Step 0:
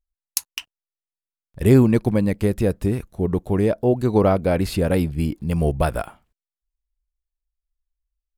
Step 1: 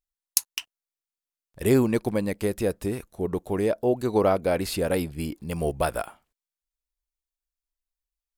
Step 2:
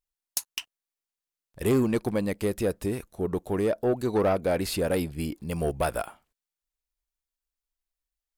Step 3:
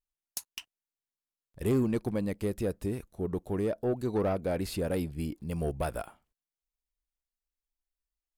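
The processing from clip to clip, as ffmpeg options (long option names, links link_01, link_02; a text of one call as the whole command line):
ffmpeg -i in.wav -af "bass=frequency=250:gain=-9,treble=frequency=4000:gain=4,volume=-2.5dB" out.wav
ffmpeg -i in.wav -af "asoftclip=type=tanh:threshold=-16.5dB" out.wav
ffmpeg -i in.wav -af "lowshelf=frequency=350:gain=7,volume=-8dB" out.wav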